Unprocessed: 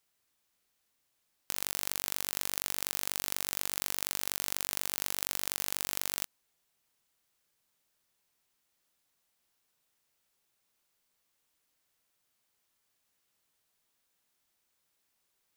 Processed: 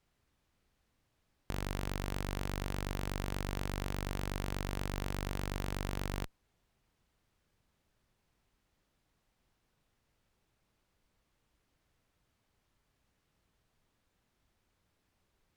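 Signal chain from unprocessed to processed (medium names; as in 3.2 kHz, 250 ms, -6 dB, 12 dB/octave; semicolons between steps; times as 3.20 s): RIAA curve playback; one-sided clip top -26.5 dBFS; trim +4.5 dB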